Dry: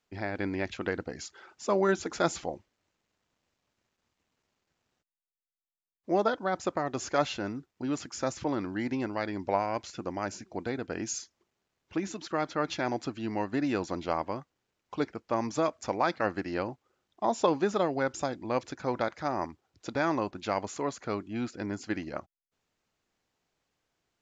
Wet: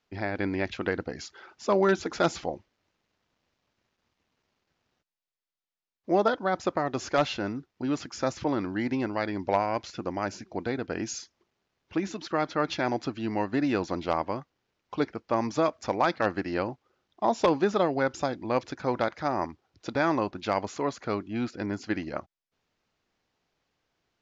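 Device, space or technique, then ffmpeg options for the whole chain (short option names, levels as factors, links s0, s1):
synthesiser wavefolder: -af "aeval=exprs='0.158*(abs(mod(val(0)/0.158+3,4)-2)-1)':c=same,lowpass=f=6000:w=0.5412,lowpass=f=6000:w=1.3066,volume=1.41"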